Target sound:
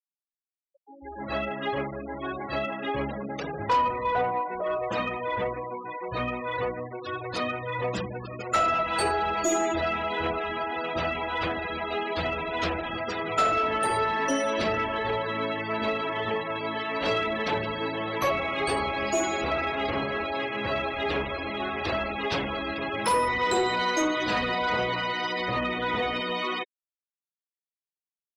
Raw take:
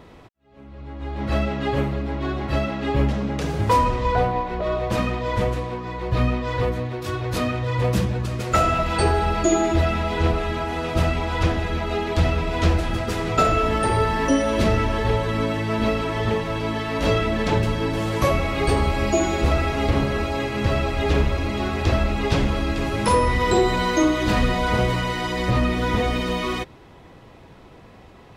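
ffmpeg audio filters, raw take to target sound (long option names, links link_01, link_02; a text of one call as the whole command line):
ffmpeg -i in.wav -af "highpass=frequency=670:poles=1,afftfilt=real='re*gte(hypot(re,im),0.0316)':imag='im*gte(hypot(re,im),0.0316)':win_size=1024:overlap=0.75,asoftclip=type=tanh:threshold=-16.5dB" out.wav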